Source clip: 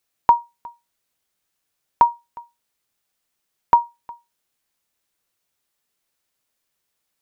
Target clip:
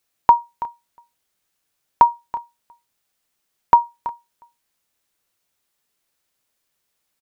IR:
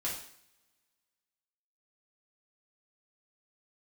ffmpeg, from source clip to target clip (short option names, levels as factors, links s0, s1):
-af "aecho=1:1:329:0.168,volume=1.26"